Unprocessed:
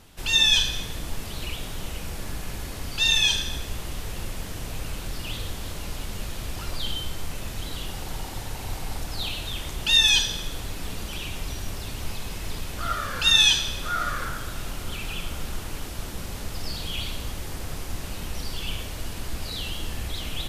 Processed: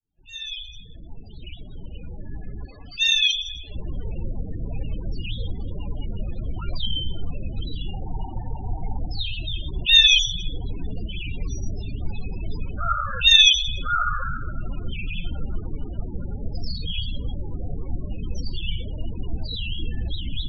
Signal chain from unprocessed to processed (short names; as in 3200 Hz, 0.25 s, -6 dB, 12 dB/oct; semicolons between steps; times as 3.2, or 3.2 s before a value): opening faded in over 4.30 s; 2.65–3.75 low shelf 320 Hz -10 dB; loudest bins only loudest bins 16; gain +5 dB